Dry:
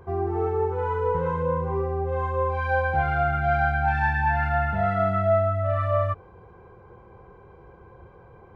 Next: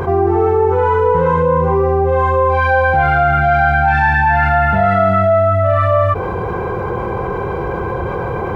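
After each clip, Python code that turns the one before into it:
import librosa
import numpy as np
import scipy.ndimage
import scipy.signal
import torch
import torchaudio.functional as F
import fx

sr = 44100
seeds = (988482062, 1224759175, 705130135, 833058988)

y = fx.low_shelf(x, sr, hz=100.0, db=-6.5)
y = fx.env_flatten(y, sr, amount_pct=70)
y = y * 10.0 ** (7.5 / 20.0)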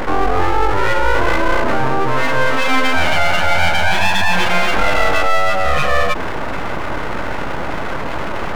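y = scipy.signal.sosfilt(scipy.signal.butter(2, 100.0, 'highpass', fs=sr, output='sos'), x)
y = np.abs(y)
y = y * 10.0 ** (1.5 / 20.0)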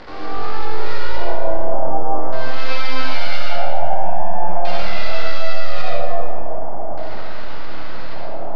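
y = fx.filter_lfo_lowpass(x, sr, shape='square', hz=0.43, low_hz=730.0, high_hz=4600.0, q=4.3)
y = fx.rev_freeverb(y, sr, rt60_s=1.6, hf_ratio=0.75, predelay_ms=30, drr_db=-4.5)
y = y * 10.0 ** (-17.5 / 20.0)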